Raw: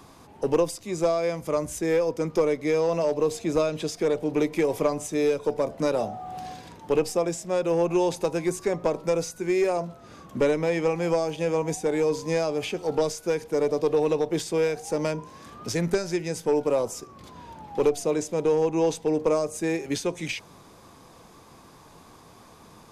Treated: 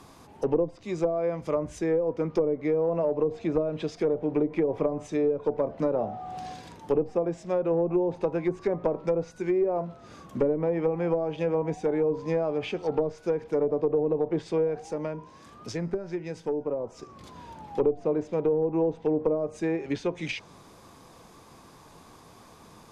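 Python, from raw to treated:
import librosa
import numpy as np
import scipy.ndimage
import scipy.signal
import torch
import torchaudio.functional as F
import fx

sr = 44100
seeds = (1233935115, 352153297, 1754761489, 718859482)

y = fx.env_lowpass_down(x, sr, base_hz=550.0, full_db=-18.5)
y = fx.comb_fb(y, sr, f0_hz=320.0, decay_s=0.98, harmonics='all', damping=0.0, mix_pct=40, at=(14.86, 16.98), fade=0.02)
y = y * 10.0 ** (-1.0 / 20.0)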